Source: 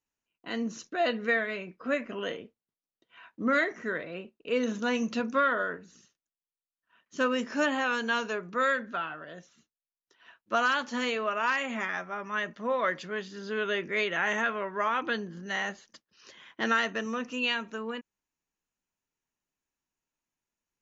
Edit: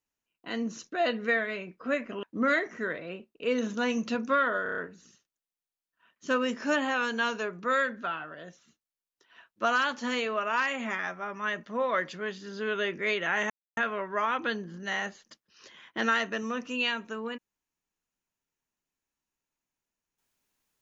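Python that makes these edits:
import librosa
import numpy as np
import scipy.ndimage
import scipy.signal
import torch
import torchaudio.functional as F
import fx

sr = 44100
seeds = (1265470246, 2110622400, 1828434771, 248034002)

y = fx.edit(x, sr, fx.cut(start_s=2.23, length_s=1.05),
    fx.stutter(start_s=5.68, slice_s=0.03, count=6),
    fx.insert_silence(at_s=14.4, length_s=0.27), tone=tone)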